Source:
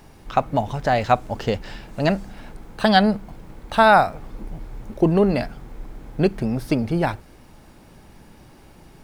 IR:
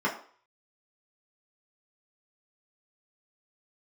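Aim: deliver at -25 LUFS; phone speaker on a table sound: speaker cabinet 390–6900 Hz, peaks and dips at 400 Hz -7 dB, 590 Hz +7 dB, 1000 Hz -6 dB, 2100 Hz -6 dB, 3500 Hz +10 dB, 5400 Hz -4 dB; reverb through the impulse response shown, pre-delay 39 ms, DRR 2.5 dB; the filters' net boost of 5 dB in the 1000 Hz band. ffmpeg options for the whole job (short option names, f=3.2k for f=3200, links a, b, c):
-filter_complex "[0:a]equalizer=f=1k:t=o:g=8.5,asplit=2[a][b];[1:a]atrim=start_sample=2205,adelay=39[c];[b][c]afir=irnorm=-1:irlink=0,volume=-14dB[d];[a][d]amix=inputs=2:normalize=0,highpass=f=390:w=0.5412,highpass=f=390:w=1.3066,equalizer=f=400:t=q:w=4:g=-7,equalizer=f=590:t=q:w=4:g=7,equalizer=f=1k:t=q:w=4:g=-6,equalizer=f=2.1k:t=q:w=4:g=-6,equalizer=f=3.5k:t=q:w=4:g=10,equalizer=f=5.4k:t=q:w=4:g=-4,lowpass=f=6.9k:w=0.5412,lowpass=f=6.9k:w=1.3066,volume=-9.5dB"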